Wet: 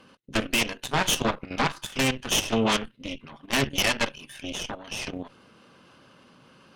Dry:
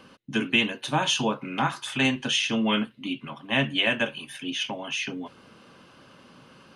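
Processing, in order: added harmonics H 8 -11 dB, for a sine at -8.5 dBFS; level quantiser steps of 11 dB

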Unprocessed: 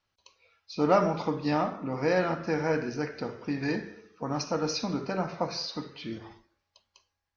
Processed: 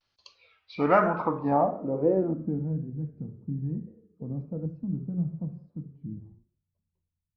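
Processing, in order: 3.87–4.65 graphic EQ 125/500/2000 Hz -5/+10/+5 dB; vibrato 1.1 Hz 91 cents; low-pass sweep 4600 Hz -> 160 Hz, 0.28–2.8

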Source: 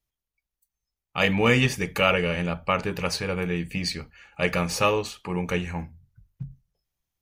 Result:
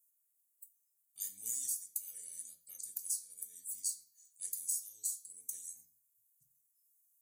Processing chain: inverse Chebyshev high-pass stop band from 2800 Hz, stop band 60 dB; compressor 12:1, threshold -51 dBFS, peak gain reduction 17 dB; reverb RT60 0.45 s, pre-delay 3 ms, DRR 1 dB; gain +15 dB

